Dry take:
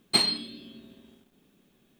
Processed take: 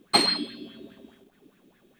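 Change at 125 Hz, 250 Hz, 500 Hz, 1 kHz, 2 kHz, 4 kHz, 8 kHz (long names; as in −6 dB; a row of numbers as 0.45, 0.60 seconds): +1.0, +5.0, +7.0, +10.0, +4.5, +1.5, +0.5 decibels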